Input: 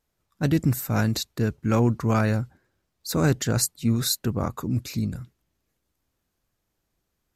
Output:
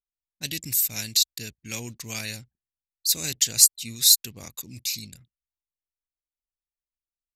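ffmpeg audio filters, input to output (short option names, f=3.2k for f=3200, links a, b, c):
-af "anlmdn=0.0251,aexciter=amount=15.4:drive=6.8:freq=2.1k,volume=-17.5dB"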